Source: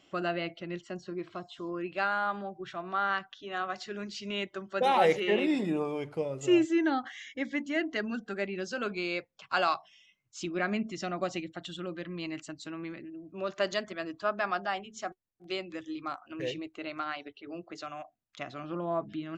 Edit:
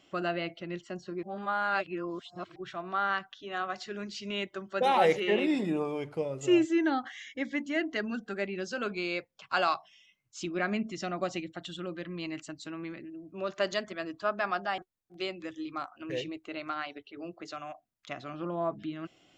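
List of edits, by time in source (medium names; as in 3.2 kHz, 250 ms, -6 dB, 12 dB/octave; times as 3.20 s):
1.23–2.56 s: reverse
14.78–15.08 s: delete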